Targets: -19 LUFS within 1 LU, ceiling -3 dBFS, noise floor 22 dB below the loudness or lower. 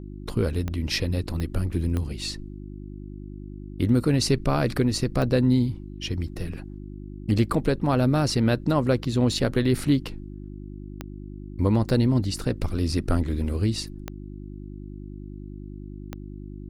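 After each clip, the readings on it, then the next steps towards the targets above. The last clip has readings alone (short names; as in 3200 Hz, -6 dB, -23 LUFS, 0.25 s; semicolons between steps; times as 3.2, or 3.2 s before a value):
clicks 8; hum 50 Hz; harmonics up to 350 Hz; hum level -36 dBFS; loudness -24.5 LUFS; peak -9.0 dBFS; loudness target -19.0 LUFS
-> de-click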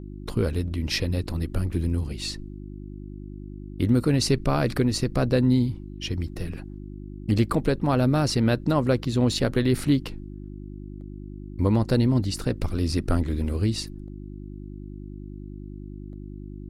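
clicks 0; hum 50 Hz; harmonics up to 350 Hz; hum level -36 dBFS
-> de-hum 50 Hz, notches 7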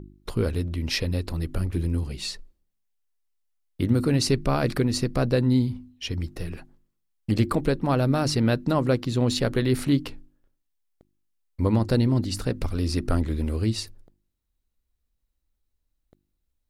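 hum none; loudness -25.0 LUFS; peak -10.0 dBFS; loudness target -19.0 LUFS
-> gain +6 dB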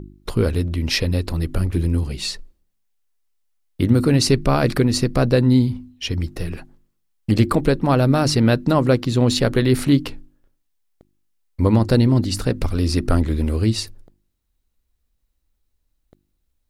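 loudness -19.0 LUFS; peak -4.0 dBFS; noise floor -71 dBFS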